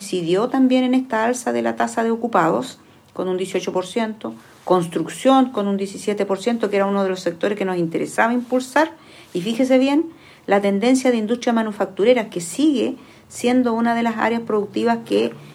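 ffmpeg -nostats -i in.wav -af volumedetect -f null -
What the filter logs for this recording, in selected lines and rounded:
mean_volume: -19.6 dB
max_volume: -1.6 dB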